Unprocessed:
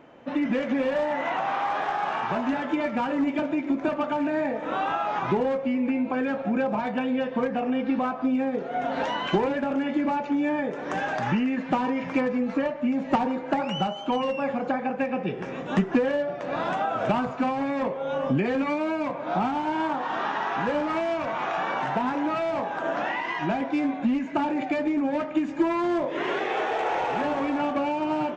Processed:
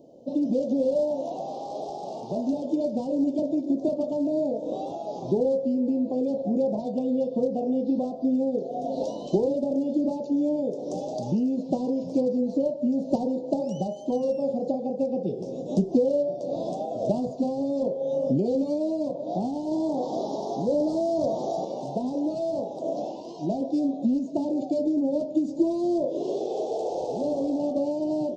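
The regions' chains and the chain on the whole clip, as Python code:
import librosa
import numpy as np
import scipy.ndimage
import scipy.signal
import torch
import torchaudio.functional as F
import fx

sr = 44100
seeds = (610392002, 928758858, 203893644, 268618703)

y = fx.chain(x, sr, fx.peak_eq(hz=2600.0, db=-13.0, octaves=0.42),
    fx.env_flatten(amount_pct=100), at=(19.71, 21.65))
y = scipy.signal.sosfilt(scipy.signal.cheby1(3, 1.0, [610.0, 4600.0], 'bandstop', fs=sr, output='sos'), y)
y = fx.low_shelf(y, sr, hz=120.0, db=-9.5)
y = y * 10.0 ** (3.0 / 20.0)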